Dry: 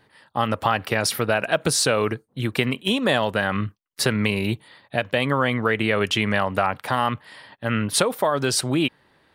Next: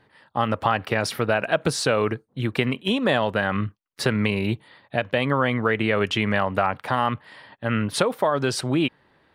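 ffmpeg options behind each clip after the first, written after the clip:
ffmpeg -i in.wav -af "highshelf=frequency=5400:gain=-12" out.wav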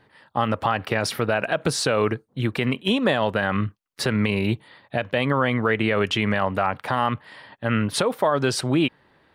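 ffmpeg -i in.wav -af "alimiter=limit=-10.5dB:level=0:latency=1:release=50,volume=1.5dB" out.wav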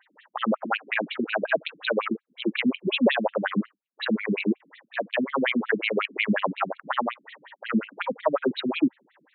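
ffmpeg -i in.wav -af "afftfilt=real='re*between(b*sr/1024,220*pow(3100/220,0.5+0.5*sin(2*PI*5.5*pts/sr))/1.41,220*pow(3100/220,0.5+0.5*sin(2*PI*5.5*pts/sr))*1.41)':imag='im*between(b*sr/1024,220*pow(3100/220,0.5+0.5*sin(2*PI*5.5*pts/sr))/1.41,220*pow(3100/220,0.5+0.5*sin(2*PI*5.5*pts/sr))*1.41)':win_size=1024:overlap=0.75,volume=4.5dB" out.wav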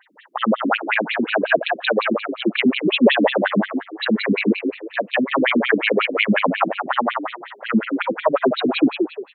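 ffmpeg -i in.wav -filter_complex "[0:a]asplit=5[link_01][link_02][link_03][link_04][link_05];[link_02]adelay=176,afreqshift=57,volume=-5.5dB[link_06];[link_03]adelay=352,afreqshift=114,volume=-15.7dB[link_07];[link_04]adelay=528,afreqshift=171,volume=-25.8dB[link_08];[link_05]adelay=704,afreqshift=228,volume=-36dB[link_09];[link_01][link_06][link_07][link_08][link_09]amix=inputs=5:normalize=0,volume=6dB" out.wav

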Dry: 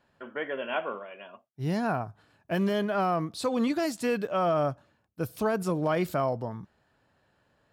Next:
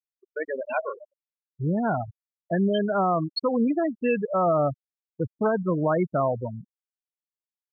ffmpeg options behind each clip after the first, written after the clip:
ffmpeg -i in.wav -af "afftfilt=real='re*gte(hypot(re,im),0.0794)':imag='im*gte(hypot(re,im),0.0794)':win_size=1024:overlap=0.75,aexciter=amount=7.2:drive=7.1:freq=3300,agate=range=-33dB:threshold=-43dB:ratio=3:detection=peak,volume=4dB" out.wav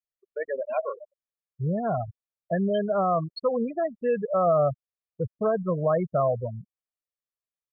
ffmpeg -i in.wav -af "highshelf=frequency=2100:gain=-10.5,aecho=1:1:1.7:0.72,volume=-2dB" out.wav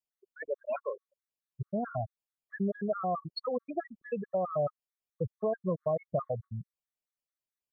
ffmpeg -i in.wav -af "acompressor=threshold=-28dB:ratio=2.5,afftfilt=real='re*gt(sin(2*PI*4.6*pts/sr)*(1-2*mod(floor(b*sr/1024/1100),2)),0)':imag='im*gt(sin(2*PI*4.6*pts/sr)*(1-2*mod(floor(b*sr/1024/1100),2)),0)':win_size=1024:overlap=0.75" out.wav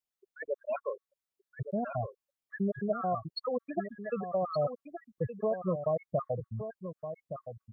ffmpeg -i in.wav -af "aecho=1:1:1169:0.335" out.wav

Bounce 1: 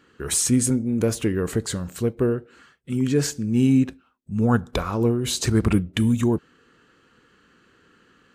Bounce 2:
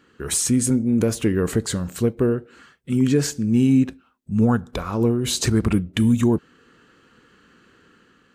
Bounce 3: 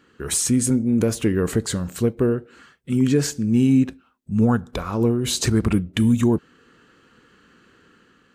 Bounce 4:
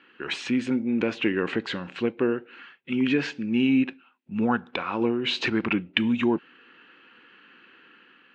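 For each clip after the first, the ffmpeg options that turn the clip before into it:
ffmpeg -i in.wav -af "equalizer=frequency=220:width_type=o:width=0.77:gain=2,alimiter=limit=-11.5dB:level=0:latency=1:release=408,dynaudnorm=framelen=150:gausssize=7:maxgain=3dB" out.wav
ffmpeg -i in.wav -af anull out.wav
ffmpeg -i in.wav -af "highpass=390,equalizer=frequency=440:width_type=q:width=4:gain=-8,equalizer=frequency=630:width_type=q:width=4:gain=-8,equalizer=frequency=1200:width_type=q:width=4:gain=-5,equalizer=frequency=2600:width_type=q:width=4:gain=7,lowpass=frequency=3300:width=0.5412,lowpass=frequency=3300:width=1.3066,volume=4dB" out.wav

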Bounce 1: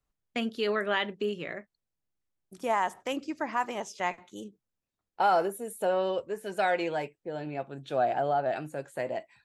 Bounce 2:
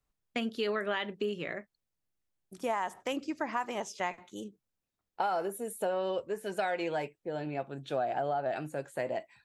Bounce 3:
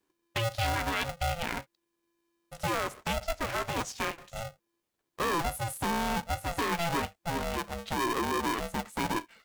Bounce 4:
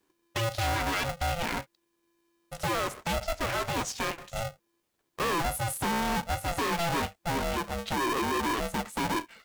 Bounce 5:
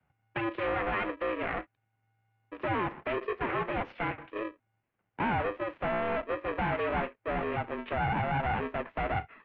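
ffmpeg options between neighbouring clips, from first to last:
ffmpeg -i in.wav -af "acompressor=threshold=-28dB:ratio=6" out.wav
ffmpeg -i in.wav -filter_complex "[0:a]acrossover=split=2000[link_01][link_02];[link_01]alimiter=level_in=3dB:limit=-24dB:level=0:latency=1:release=12,volume=-3dB[link_03];[link_03][link_02]amix=inputs=2:normalize=0,aeval=exprs='val(0)*sgn(sin(2*PI*340*n/s))':channel_layout=same,volume=4dB" out.wav
ffmpeg -i in.wav -af "asoftclip=type=hard:threshold=-31dB,volume=5dB" out.wav
ffmpeg -i in.wav -af "highpass=frequency=300:width_type=q:width=0.5412,highpass=frequency=300:width_type=q:width=1.307,lowpass=frequency=2800:width_type=q:width=0.5176,lowpass=frequency=2800:width_type=q:width=0.7071,lowpass=frequency=2800:width_type=q:width=1.932,afreqshift=-230" out.wav

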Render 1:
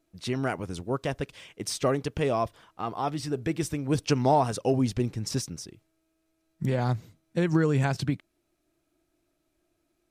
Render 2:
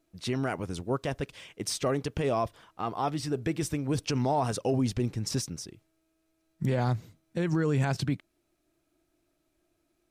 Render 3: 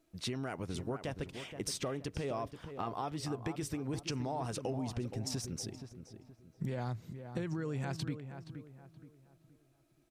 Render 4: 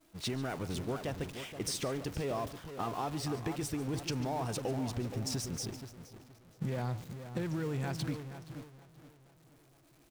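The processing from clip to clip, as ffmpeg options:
ffmpeg -i in.wav -af "alimiter=limit=-19dB:level=0:latency=1:release=21" out.wav
ffmpeg -i in.wav -filter_complex "[0:a]acompressor=threshold=-35dB:ratio=6,asplit=2[link_01][link_02];[link_02]adelay=473,lowpass=frequency=1900:poles=1,volume=-9dB,asplit=2[link_03][link_04];[link_04]adelay=473,lowpass=frequency=1900:poles=1,volume=0.37,asplit=2[link_05][link_06];[link_06]adelay=473,lowpass=frequency=1900:poles=1,volume=0.37,asplit=2[link_07][link_08];[link_08]adelay=473,lowpass=frequency=1900:poles=1,volume=0.37[link_09];[link_03][link_05][link_07][link_09]amix=inputs=4:normalize=0[link_10];[link_01][link_10]amix=inputs=2:normalize=0" out.wav
ffmpeg -i in.wav -af "aeval=exprs='val(0)+0.5*0.00891*sgn(val(0))':channel_layout=same,aecho=1:1:144:0.141,agate=range=-33dB:threshold=-37dB:ratio=3:detection=peak" out.wav

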